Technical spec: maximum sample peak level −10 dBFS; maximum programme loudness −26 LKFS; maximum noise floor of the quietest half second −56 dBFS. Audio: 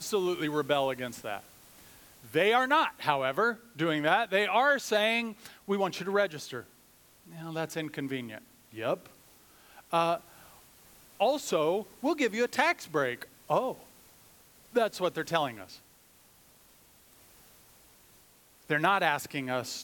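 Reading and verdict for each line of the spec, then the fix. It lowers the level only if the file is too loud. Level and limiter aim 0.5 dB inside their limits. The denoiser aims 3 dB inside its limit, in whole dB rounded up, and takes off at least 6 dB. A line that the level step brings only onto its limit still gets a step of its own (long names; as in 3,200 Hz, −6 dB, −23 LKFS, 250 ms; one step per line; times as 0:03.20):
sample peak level −9.0 dBFS: out of spec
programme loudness −29.5 LKFS: in spec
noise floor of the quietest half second −60 dBFS: in spec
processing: brickwall limiter −10.5 dBFS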